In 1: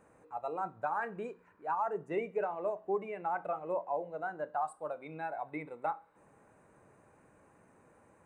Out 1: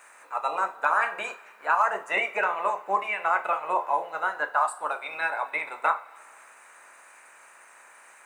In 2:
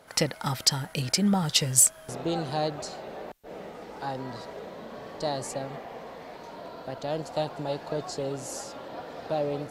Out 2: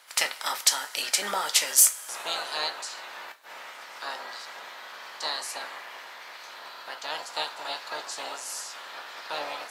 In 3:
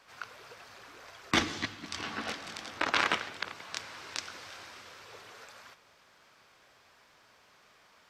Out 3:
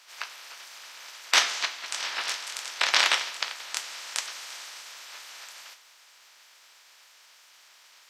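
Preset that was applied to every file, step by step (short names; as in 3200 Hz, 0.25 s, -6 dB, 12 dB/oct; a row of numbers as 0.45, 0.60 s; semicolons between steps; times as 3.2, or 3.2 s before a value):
spectral limiter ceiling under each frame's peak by 17 dB; HPF 880 Hz 12 dB/oct; two-slope reverb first 0.23 s, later 2 s, from -22 dB, DRR 6 dB; match loudness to -27 LUFS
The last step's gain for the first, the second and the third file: +13.0, +0.5, +6.0 dB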